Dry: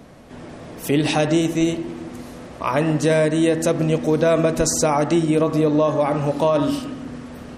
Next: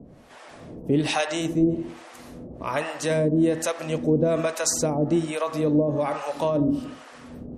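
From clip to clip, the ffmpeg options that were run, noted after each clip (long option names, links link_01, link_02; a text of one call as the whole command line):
ffmpeg -i in.wav -filter_complex "[0:a]acrossover=split=590[link_01][link_02];[link_01]aeval=exprs='val(0)*(1-1/2+1/2*cos(2*PI*1.2*n/s))':channel_layout=same[link_03];[link_02]aeval=exprs='val(0)*(1-1/2-1/2*cos(2*PI*1.2*n/s))':channel_layout=same[link_04];[link_03][link_04]amix=inputs=2:normalize=0" out.wav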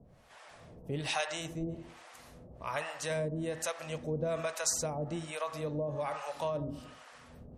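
ffmpeg -i in.wav -af "equalizer=frequency=290:width_type=o:width=1.2:gain=-13,volume=-7dB" out.wav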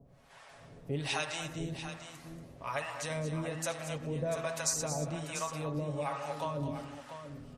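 ffmpeg -i in.wav -af "aecho=1:1:7.3:0.45,aecho=1:1:208|232|691:0.15|0.299|0.316,volume=-1.5dB" out.wav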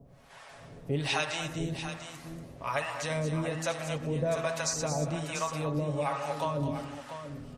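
ffmpeg -i in.wav -filter_complex "[0:a]acrossover=split=6400[link_01][link_02];[link_02]acompressor=threshold=-51dB:ratio=4:attack=1:release=60[link_03];[link_01][link_03]amix=inputs=2:normalize=0,volume=4.5dB" out.wav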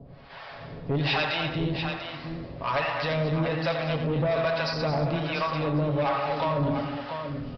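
ffmpeg -i in.wav -filter_complex "[0:a]aresample=11025,asoftclip=type=tanh:threshold=-29dB,aresample=44100,asplit=2[link_01][link_02];[link_02]adelay=87.46,volume=-9dB,highshelf=frequency=4000:gain=-1.97[link_03];[link_01][link_03]amix=inputs=2:normalize=0,volume=8dB" out.wav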